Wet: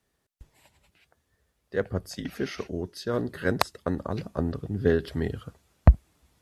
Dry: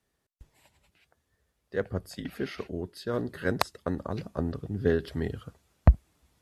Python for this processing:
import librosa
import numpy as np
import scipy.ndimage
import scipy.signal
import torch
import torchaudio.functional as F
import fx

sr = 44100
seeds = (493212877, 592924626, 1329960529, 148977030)

y = fx.peak_eq(x, sr, hz=5900.0, db=10.5, octaves=0.27, at=(2.06, 3.08))
y = y * 10.0 ** (2.5 / 20.0)